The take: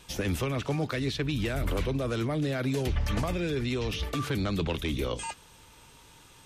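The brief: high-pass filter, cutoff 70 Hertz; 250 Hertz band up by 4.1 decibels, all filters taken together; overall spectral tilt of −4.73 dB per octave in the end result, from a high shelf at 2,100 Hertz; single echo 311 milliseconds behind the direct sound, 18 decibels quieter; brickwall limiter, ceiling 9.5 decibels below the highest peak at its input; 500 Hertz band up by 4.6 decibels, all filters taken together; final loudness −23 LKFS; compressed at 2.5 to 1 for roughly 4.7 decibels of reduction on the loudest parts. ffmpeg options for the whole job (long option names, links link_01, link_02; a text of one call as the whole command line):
ffmpeg -i in.wav -af "highpass=70,equalizer=frequency=250:width_type=o:gain=4,equalizer=frequency=500:width_type=o:gain=4,highshelf=frequency=2100:gain=7,acompressor=threshold=-29dB:ratio=2.5,alimiter=level_in=3.5dB:limit=-24dB:level=0:latency=1,volume=-3.5dB,aecho=1:1:311:0.126,volume=12.5dB" out.wav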